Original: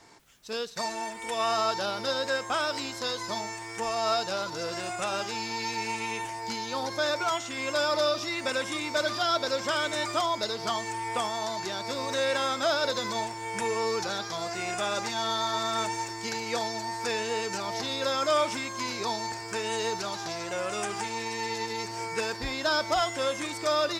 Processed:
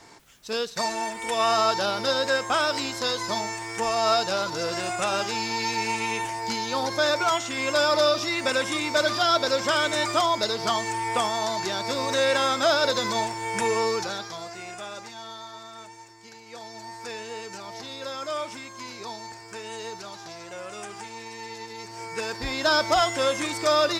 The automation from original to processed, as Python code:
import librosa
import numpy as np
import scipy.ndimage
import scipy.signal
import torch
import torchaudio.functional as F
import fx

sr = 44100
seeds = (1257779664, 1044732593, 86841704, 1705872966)

y = fx.gain(x, sr, db=fx.line((13.78, 5.0), (14.52, -5.0), (15.76, -14.0), (16.44, -14.0), (16.84, -6.0), (21.74, -6.0), (22.68, 5.0)))